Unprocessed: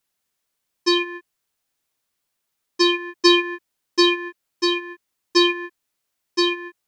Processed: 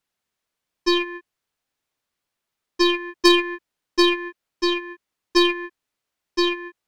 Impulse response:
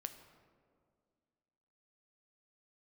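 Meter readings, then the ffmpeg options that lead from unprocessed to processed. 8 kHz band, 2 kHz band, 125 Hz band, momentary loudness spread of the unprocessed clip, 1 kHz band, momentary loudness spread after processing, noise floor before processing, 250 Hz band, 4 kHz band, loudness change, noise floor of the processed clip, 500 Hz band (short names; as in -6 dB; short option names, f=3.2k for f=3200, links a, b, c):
-2.5 dB, -1.0 dB, n/a, 19 LU, 0.0 dB, 19 LU, -78 dBFS, 0.0 dB, -2.5 dB, -1.0 dB, -83 dBFS, 0.0 dB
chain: -af "aeval=exprs='0.708*(cos(1*acos(clip(val(0)/0.708,-1,1)))-cos(1*PI/2))+0.158*(cos(3*acos(clip(val(0)/0.708,-1,1)))-cos(3*PI/2))+0.0355*(cos(5*acos(clip(val(0)/0.708,-1,1)))-cos(5*PI/2))+0.0158*(cos(8*acos(clip(val(0)/0.708,-1,1)))-cos(8*PI/2))':c=same,highshelf=f=6.1k:g=-10,volume=4.5dB"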